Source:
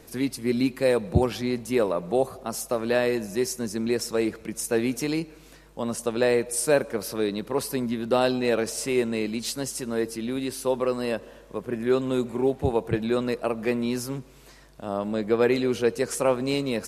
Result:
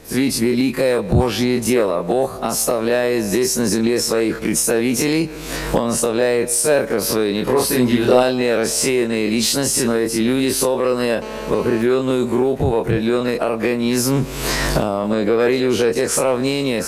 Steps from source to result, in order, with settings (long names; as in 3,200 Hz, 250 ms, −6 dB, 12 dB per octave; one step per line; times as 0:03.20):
every bin's largest magnitude spread in time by 60 ms
camcorder AGC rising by 41 dB per second
soft clipping −7.5 dBFS, distortion −24 dB
0:07.44–0:08.23: double-tracking delay 24 ms −2 dB
0:11.22–0:11.82: phone interference −34 dBFS
level +3 dB